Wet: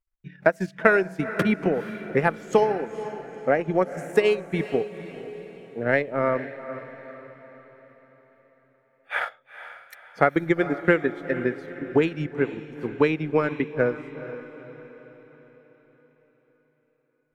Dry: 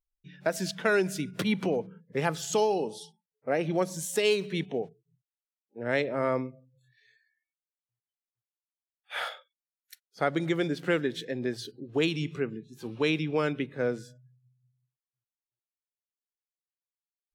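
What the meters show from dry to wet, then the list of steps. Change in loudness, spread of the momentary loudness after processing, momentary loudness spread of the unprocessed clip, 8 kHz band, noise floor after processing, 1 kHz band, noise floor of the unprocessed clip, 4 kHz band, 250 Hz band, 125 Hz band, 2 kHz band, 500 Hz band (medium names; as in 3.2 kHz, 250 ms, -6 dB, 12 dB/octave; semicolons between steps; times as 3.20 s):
+5.0 dB, 19 LU, 12 LU, under -10 dB, -68 dBFS, +7.0 dB, under -85 dBFS, -5.5 dB, +5.0 dB, +4.0 dB, +7.0 dB, +6.0 dB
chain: resonant high shelf 2.7 kHz -9.5 dB, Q 1.5; transient shaper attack +7 dB, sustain -11 dB; echo that smears into a reverb 468 ms, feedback 48%, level -12.5 dB; trim +2.5 dB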